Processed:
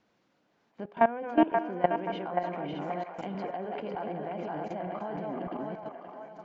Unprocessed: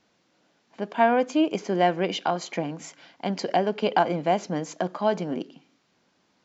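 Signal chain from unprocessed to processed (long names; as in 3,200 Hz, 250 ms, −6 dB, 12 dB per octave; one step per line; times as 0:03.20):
feedback delay that plays each chunk backwards 304 ms, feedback 52%, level −5 dB
high-shelf EQ 3,500 Hz −11.5 dB
hum removal 82.56 Hz, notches 10
output level in coarse steps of 18 dB
treble cut that deepens with the level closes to 2,600 Hz, closed at −33 dBFS
on a send: delay with a band-pass on its return 530 ms, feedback 42%, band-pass 1,200 Hz, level −4 dB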